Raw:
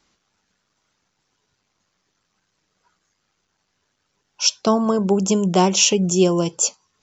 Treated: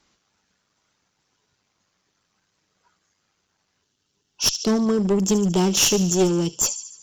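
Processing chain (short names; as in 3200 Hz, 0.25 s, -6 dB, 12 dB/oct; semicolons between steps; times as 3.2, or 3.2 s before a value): thin delay 73 ms, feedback 56%, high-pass 3900 Hz, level -10 dB; spectral gain 3.82–6.65, 460–2600 Hz -7 dB; one-sided clip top -18.5 dBFS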